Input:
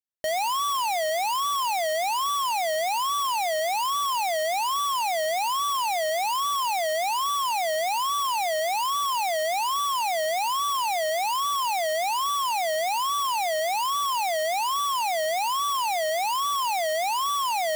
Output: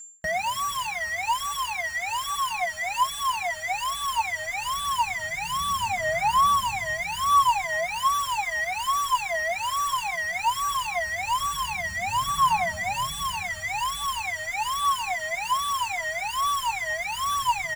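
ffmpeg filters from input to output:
ffmpeg -i in.wav -filter_complex "[0:a]highpass=frequency=73:poles=1,bandreject=frequency=5000:width=16,aeval=exprs='val(0)+0.00447*sin(2*PI*7300*n/s)':channel_layout=same,firequalizer=gain_entry='entry(190,0);entry(320,-22);entry(1000,-4);entry(1600,7);entry(3300,-5);entry(5900,-2);entry(9300,-3);entry(15000,-7)':delay=0.05:min_phase=1,areverse,acompressor=mode=upward:threshold=-31dB:ratio=2.5,areverse,asubboost=boost=6:cutoff=170,acrossover=split=1300[link_01][link_02];[link_01]aphaser=in_gain=1:out_gain=1:delay=3:decay=0.69:speed=0.16:type=sinusoidal[link_03];[link_02]volume=33dB,asoftclip=hard,volume=-33dB[link_04];[link_03][link_04]amix=inputs=2:normalize=0,asplit=4[link_05][link_06][link_07][link_08];[link_06]adelay=216,afreqshift=-45,volume=-22dB[link_09];[link_07]adelay=432,afreqshift=-90,volume=-30.9dB[link_10];[link_08]adelay=648,afreqshift=-135,volume=-39.7dB[link_11];[link_05][link_09][link_10][link_11]amix=inputs=4:normalize=0,asplit=2[link_12][link_13];[link_13]adelay=4.4,afreqshift=1.3[link_14];[link_12][link_14]amix=inputs=2:normalize=1,volume=6.5dB" out.wav

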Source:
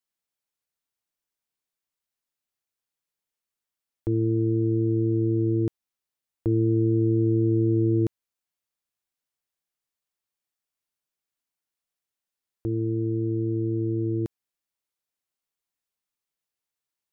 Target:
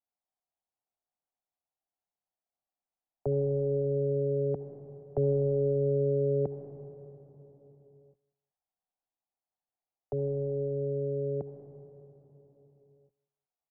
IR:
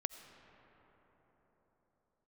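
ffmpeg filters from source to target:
-filter_complex "[0:a]lowpass=frequency=590:width_type=q:width=4.9,equalizer=frequency=430:width=0.58:gain=-10,asetrate=55125,aresample=44100,acrossover=split=100|160|250[link_01][link_02][link_03][link_04];[link_04]acontrast=45[link_05];[link_01][link_02][link_03][link_05]amix=inputs=4:normalize=0,aecho=1:1:188|376:0.0708|0.0198[link_06];[1:a]atrim=start_sample=2205,asetrate=57330,aresample=44100[link_07];[link_06][link_07]afir=irnorm=-1:irlink=0"

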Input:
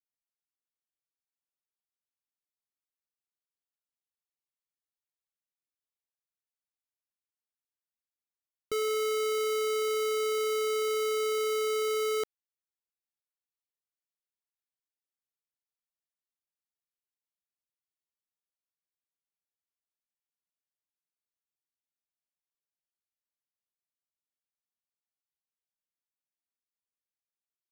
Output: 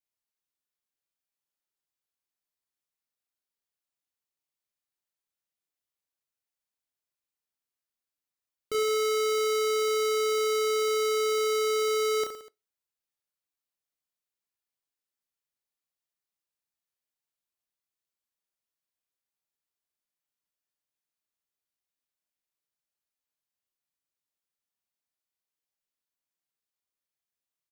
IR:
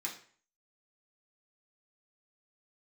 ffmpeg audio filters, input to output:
-filter_complex "[0:a]aecho=1:1:30|67.5|114.4|173|246.2:0.631|0.398|0.251|0.158|0.1,asplit=2[link_01][link_02];[1:a]atrim=start_sample=2205,asetrate=83790,aresample=44100[link_03];[link_02][link_03]afir=irnorm=-1:irlink=0,volume=-11.5dB[link_04];[link_01][link_04]amix=inputs=2:normalize=0"

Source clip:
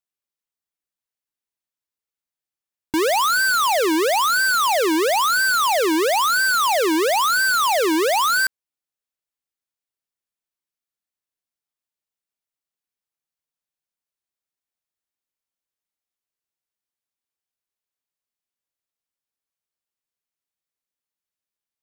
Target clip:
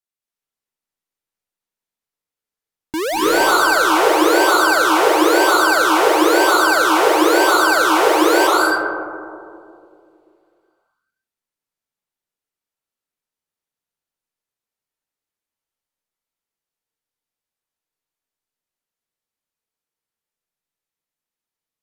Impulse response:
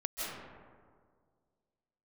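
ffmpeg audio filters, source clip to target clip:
-filter_complex "[1:a]atrim=start_sample=2205,asetrate=31311,aresample=44100[link_01];[0:a][link_01]afir=irnorm=-1:irlink=0,volume=-2dB"

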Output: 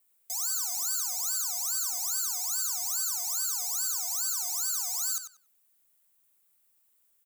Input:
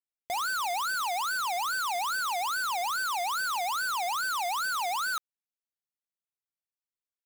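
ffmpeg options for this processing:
ffmpeg -i in.wav -filter_complex "[0:a]aexciter=amount=2.7:drive=8:freq=7500,aeval=exprs='0.141*sin(PI/2*8.91*val(0)/0.141)':channel_layout=same,asplit=2[link_01][link_02];[link_02]adelay=94,lowpass=frequency=4700:poles=1,volume=-5.5dB,asplit=2[link_03][link_04];[link_04]adelay=94,lowpass=frequency=4700:poles=1,volume=0.23,asplit=2[link_05][link_06];[link_06]adelay=94,lowpass=frequency=4700:poles=1,volume=0.23[link_07];[link_01][link_03][link_05][link_07]amix=inputs=4:normalize=0,volume=-9dB" out.wav

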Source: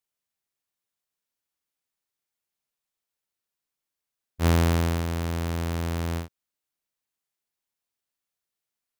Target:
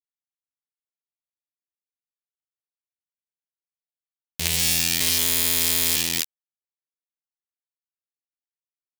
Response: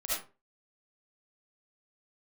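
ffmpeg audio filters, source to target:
-filter_complex "[0:a]asettb=1/sr,asplit=3[link_01][link_02][link_03];[link_01]atrim=end=5.004[link_04];[link_02]atrim=start=5:end=5.96,asetpts=PTS-STARTPTS,afade=type=in:duration=0.004:curve=qsin,afade=type=out:start_time=0.956:duration=0.004:curve=qsin,aecho=1:1:7.3:0.95,atrim=end_sample=42336[link_05];[link_03]atrim=start=5.956[link_06];[link_04][link_05]acrossfade=duration=0.004:curve1=hsin:curve2=qsin[link_07];[link_07][link_06]acrossfade=duration=0.004:curve1=qsin:curve2=hsin,asplit=2[link_08][link_09];[1:a]atrim=start_sample=2205[link_10];[link_09][link_10]afir=irnorm=-1:irlink=0,volume=-11dB[link_11];[link_08][link_11]amix=inputs=2:normalize=0,acompressor=threshold=-42dB:ratio=2,asplit=2[link_12][link_13];[link_13]adelay=174.9,volume=-16dB,highshelf=frequency=4000:gain=-3.94[link_14];[link_12][link_14]amix=inputs=2:normalize=0,acrusher=bits=5:mix=0:aa=0.000001,aexciter=amount=9.9:drive=5.1:freq=2000"

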